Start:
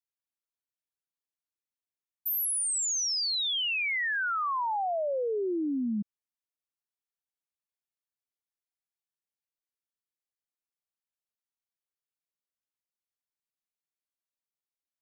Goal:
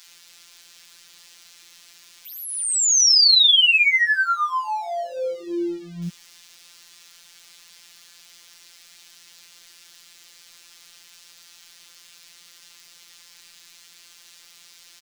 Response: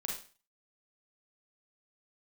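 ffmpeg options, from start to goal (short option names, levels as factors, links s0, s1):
-filter_complex "[0:a]aeval=exprs='val(0)+0.5*0.00355*sgn(val(0))':c=same,acrossover=split=5700[s0][s1];[s0]crystalizer=i=9.5:c=0[s2];[s1]acompressor=threshold=0.00316:ratio=6[s3];[s2][s3]amix=inputs=2:normalize=0,acrossover=split=720[s4][s5];[s4]adelay=70[s6];[s6][s5]amix=inputs=2:normalize=0,afftfilt=real='hypot(re,im)*cos(PI*b)':imag='0':win_size=1024:overlap=0.75,volume=1.88"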